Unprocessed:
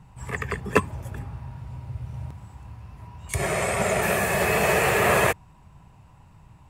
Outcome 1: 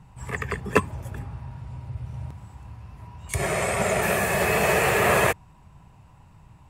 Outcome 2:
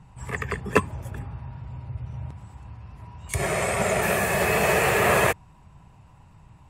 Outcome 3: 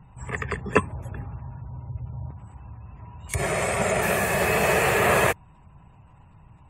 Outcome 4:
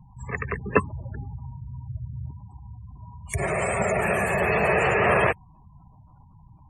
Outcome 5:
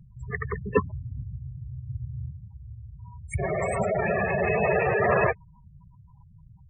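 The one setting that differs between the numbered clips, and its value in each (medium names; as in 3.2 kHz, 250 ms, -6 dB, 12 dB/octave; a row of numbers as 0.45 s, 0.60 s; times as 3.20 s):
spectral gate, under each frame's peak: -60 dB, -50 dB, -35 dB, -20 dB, -10 dB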